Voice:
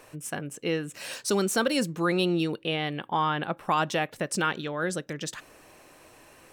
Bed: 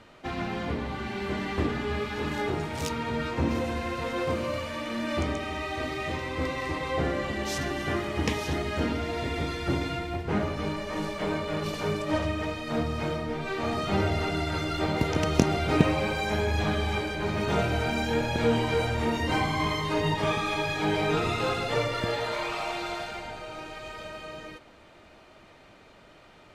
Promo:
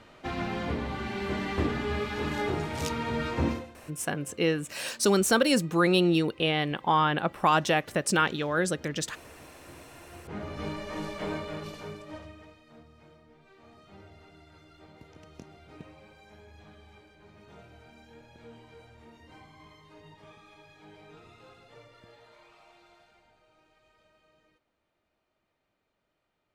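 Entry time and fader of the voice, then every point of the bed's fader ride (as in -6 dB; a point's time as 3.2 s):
3.75 s, +2.5 dB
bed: 3.49 s -0.5 dB
3.76 s -23.5 dB
9.89 s -23.5 dB
10.63 s -4 dB
11.36 s -4 dB
12.83 s -26 dB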